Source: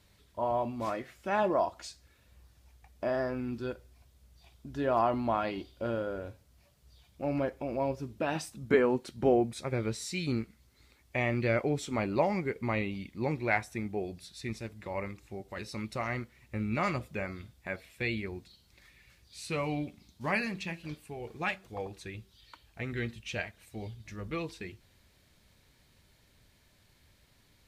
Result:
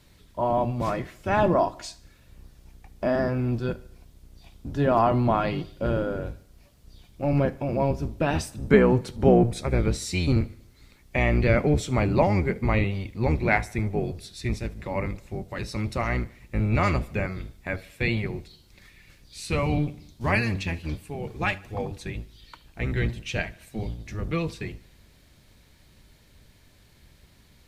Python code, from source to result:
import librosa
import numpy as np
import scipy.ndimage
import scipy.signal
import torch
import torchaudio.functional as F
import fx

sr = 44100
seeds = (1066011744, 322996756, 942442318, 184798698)

y = fx.octave_divider(x, sr, octaves=1, level_db=3.0)
y = fx.echo_feedback(y, sr, ms=74, feedback_pct=55, wet_db=-23)
y = F.gain(torch.from_numpy(y), 6.0).numpy()